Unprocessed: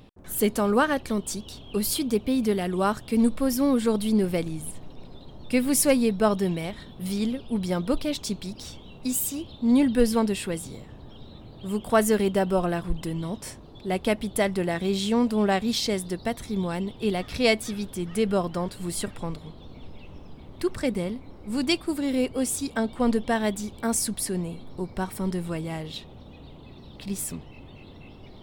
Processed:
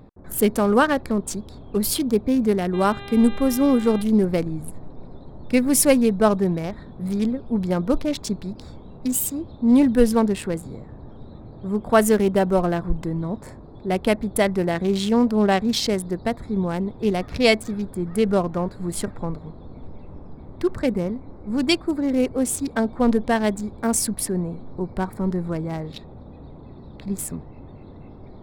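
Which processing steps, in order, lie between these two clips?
local Wiener filter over 15 samples; 2.73–4.01 s: mains buzz 400 Hz, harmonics 10, -43 dBFS -3 dB/octave; trim +4.5 dB

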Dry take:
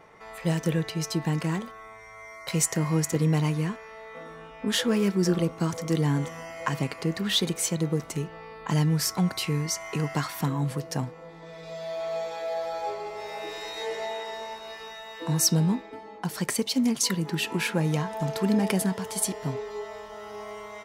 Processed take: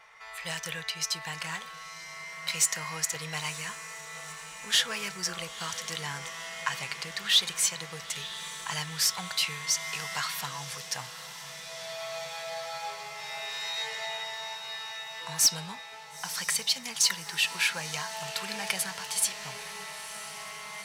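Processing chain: amplifier tone stack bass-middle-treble 10-0-10; overdrive pedal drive 13 dB, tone 5 kHz, clips at -8 dBFS; echo that smears into a reverb 959 ms, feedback 72%, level -14 dB

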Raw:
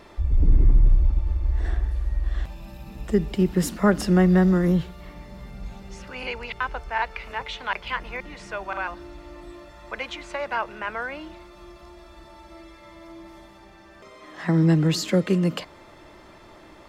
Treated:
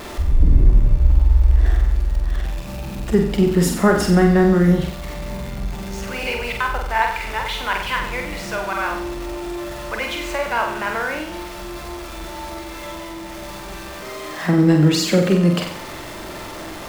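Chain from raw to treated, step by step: jump at every zero crossing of -34.5 dBFS; flutter echo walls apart 7.9 m, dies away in 0.61 s; trim +3.5 dB

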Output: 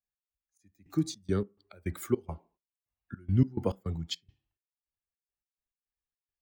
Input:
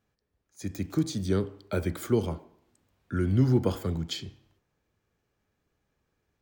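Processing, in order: expander on every frequency bin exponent 1.5; trance gate "x.xx..xx.x.x.x" 105 bpm -24 dB; on a send: reverberation RT60 0.25 s, pre-delay 3 ms, DRR 18 dB

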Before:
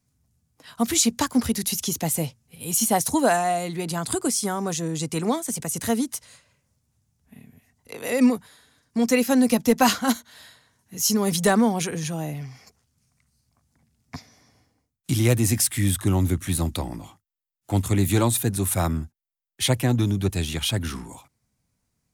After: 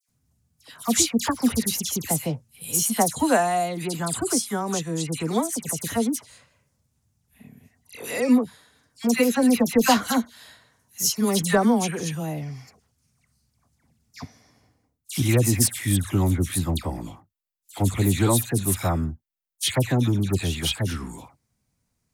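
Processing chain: phase dispersion lows, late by 85 ms, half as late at 1.9 kHz

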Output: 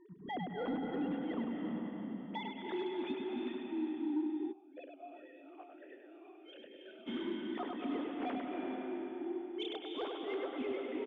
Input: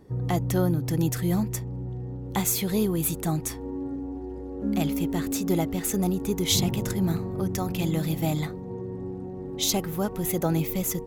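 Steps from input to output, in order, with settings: formants replaced by sine waves; tremolo 2.9 Hz, depth 93%; peak limiter -24 dBFS, peak gain reduction 10.5 dB; delay 100 ms -4.5 dB; reverberation RT60 3.6 s, pre-delay 177 ms, DRR 0.5 dB; saturation -18.5 dBFS, distortion -25 dB; 4.51–7.06 s: talking filter a-e 2.4 Hz -> 0.97 Hz; trim -8 dB

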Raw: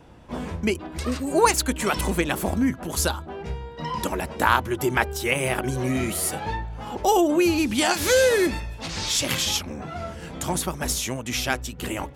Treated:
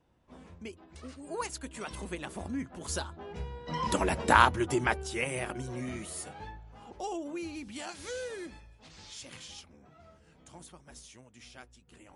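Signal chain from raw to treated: Doppler pass-by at 4.19 s, 10 m/s, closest 3.9 m; MP3 48 kbps 32 kHz

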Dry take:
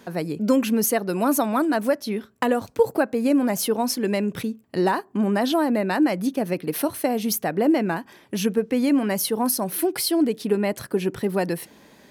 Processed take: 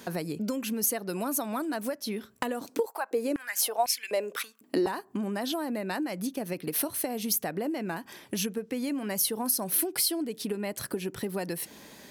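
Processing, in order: compression 6:1, threshold -30 dBFS, peak gain reduction 16.5 dB; treble shelf 3.5 kHz +8.5 dB; 2.61–4.87 s: step-sequenced high-pass 4 Hz 280–2300 Hz

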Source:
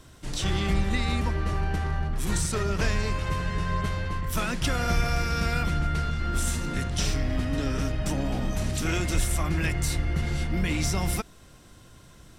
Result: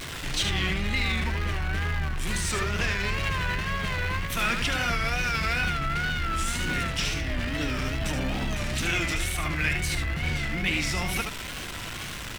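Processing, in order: jump at every zero crossing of -32.5 dBFS; in parallel at -2.5 dB: compressor with a negative ratio -28 dBFS, ratio -1; on the sum: peaking EQ 2.4 kHz +11 dB 1.7 oct; delay 76 ms -6.5 dB; wow and flutter 98 cents; trim -9 dB

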